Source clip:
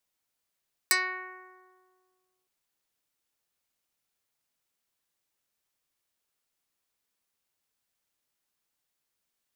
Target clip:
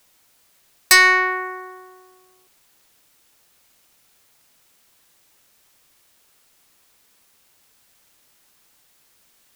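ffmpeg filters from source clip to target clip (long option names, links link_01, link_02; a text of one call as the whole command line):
ffmpeg -i in.wav -af "apsyclip=25dB,acontrast=38,volume=-7.5dB" out.wav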